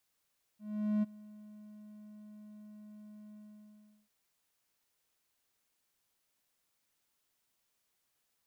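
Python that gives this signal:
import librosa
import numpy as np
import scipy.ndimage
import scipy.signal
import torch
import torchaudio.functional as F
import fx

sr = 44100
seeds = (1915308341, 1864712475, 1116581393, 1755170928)

y = fx.adsr_tone(sr, wave='triangle', hz=211.0, attack_ms=438.0, decay_ms=21.0, sustain_db=-23.0, held_s=2.75, release_ms=747.0, level_db=-24.5)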